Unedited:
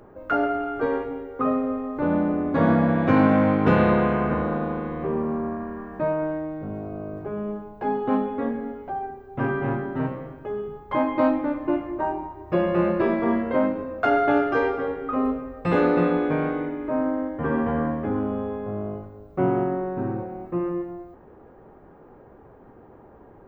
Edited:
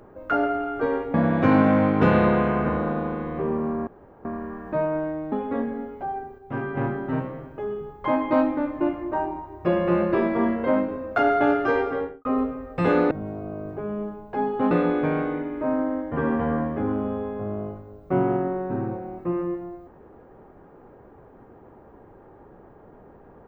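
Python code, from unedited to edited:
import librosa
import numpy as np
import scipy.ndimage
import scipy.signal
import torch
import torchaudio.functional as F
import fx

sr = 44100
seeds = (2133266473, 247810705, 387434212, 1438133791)

y = fx.studio_fade_out(x, sr, start_s=14.86, length_s=0.26)
y = fx.edit(y, sr, fx.cut(start_s=1.14, length_s=1.65),
    fx.insert_room_tone(at_s=5.52, length_s=0.38),
    fx.move(start_s=6.59, length_s=1.6, to_s=15.98),
    fx.clip_gain(start_s=9.25, length_s=0.39, db=-4.5), tone=tone)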